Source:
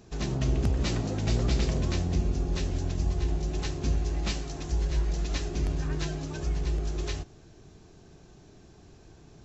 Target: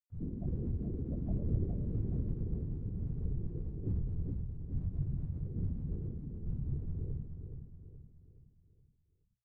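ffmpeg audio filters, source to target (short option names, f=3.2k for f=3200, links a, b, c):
-af "afftfilt=real='re*gte(hypot(re,im),0.1)':imag='im*gte(hypot(re,im),0.1)':win_size=1024:overlap=0.75,acompressor=mode=upward:threshold=-56dB:ratio=2.5,highshelf=f=2k:t=q:w=1.5:g=-9,flanger=delay=18.5:depth=3.3:speed=0.72,afftfilt=real='hypot(re,im)*cos(2*PI*random(0))':imag='hypot(re,im)*sin(2*PI*random(1))':win_size=512:overlap=0.75,bandreject=f=60:t=h:w=6,bandreject=f=120:t=h:w=6,aecho=1:1:422|844|1266|1688|2110:0.447|0.197|0.0865|0.0381|0.0167"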